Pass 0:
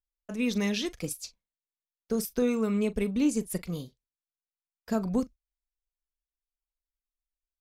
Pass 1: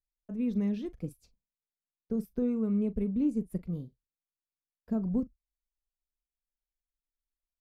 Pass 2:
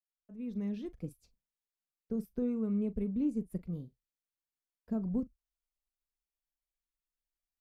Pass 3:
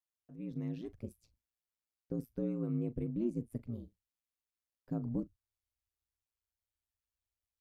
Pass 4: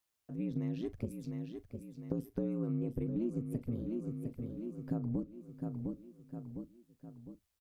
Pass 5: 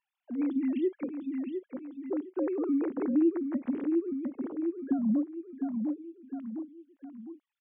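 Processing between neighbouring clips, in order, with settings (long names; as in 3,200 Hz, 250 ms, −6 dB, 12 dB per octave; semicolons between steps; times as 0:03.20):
drawn EQ curve 200 Hz 0 dB, 6,400 Hz −28 dB, 13,000 Hz −21 dB
fade in at the beginning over 0.89 s; level −3.5 dB
ring modulation 57 Hz; tape wow and flutter 26 cents
on a send: repeating echo 706 ms, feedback 47%, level −11 dB; on the sum: downward compressor 4 to 1, threshold −43 dBFS, peak gain reduction 12 dB; level +9.5 dB
three sine waves on the formant tracks; level +7.5 dB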